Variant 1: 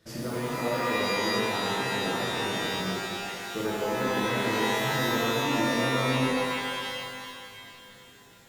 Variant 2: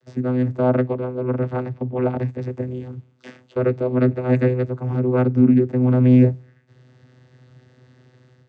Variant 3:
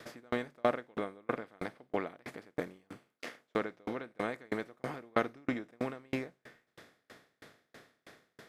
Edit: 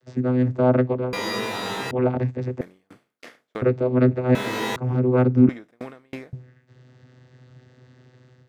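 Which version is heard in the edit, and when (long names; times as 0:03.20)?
2
0:01.13–0:01.91: punch in from 1
0:02.61–0:03.62: punch in from 3
0:04.35–0:04.76: punch in from 1
0:05.49–0:06.33: punch in from 3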